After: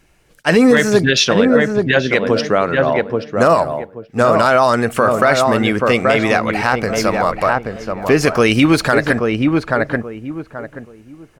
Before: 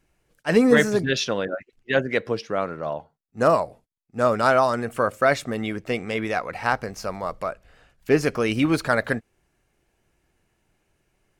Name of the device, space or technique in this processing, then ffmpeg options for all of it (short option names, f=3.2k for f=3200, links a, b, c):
mastering chain: -filter_complex "[0:a]equalizer=f=3.4k:t=o:w=2.7:g=3,asplit=2[a][b];[b]adelay=830,lowpass=f=1.3k:p=1,volume=-5dB,asplit=2[c][d];[d]adelay=830,lowpass=f=1.3k:p=1,volume=0.25,asplit=2[e][f];[f]adelay=830,lowpass=f=1.3k:p=1,volume=0.25[g];[a][c][e][g]amix=inputs=4:normalize=0,acompressor=threshold=-24dB:ratio=1.5,asoftclip=type=hard:threshold=-9.5dB,alimiter=level_in=13dB:limit=-1dB:release=50:level=0:latency=1,volume=-1dB"